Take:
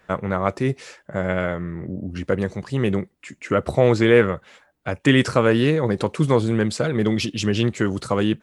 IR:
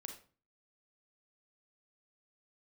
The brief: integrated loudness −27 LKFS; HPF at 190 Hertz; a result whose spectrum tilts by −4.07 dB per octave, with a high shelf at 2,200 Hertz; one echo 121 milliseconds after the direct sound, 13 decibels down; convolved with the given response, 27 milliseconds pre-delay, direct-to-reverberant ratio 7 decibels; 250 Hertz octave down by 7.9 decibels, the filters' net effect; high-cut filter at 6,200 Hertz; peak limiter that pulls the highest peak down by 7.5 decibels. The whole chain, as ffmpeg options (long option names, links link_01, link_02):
-filter_complex "[0:a]highpass=190,lowpass=6200,equalizer=frequency=250:width_type=o:gain=-9,highshelf=frequency=2200:gain=7,alimiter=limit=-10.5dB:level=0:latency=1,aecho=1:1:121:0.224,asplit=2[link_01][link_02];[1:a]atrim=start_sample=2205,adelay=27[link_03];[link_02][link_03]afir=irnorm=-1:irlink=0,volume=-2.5dB[link_04];[link_01][link_04]amix=inputs=2:normalize=0,volume=-2.5dB"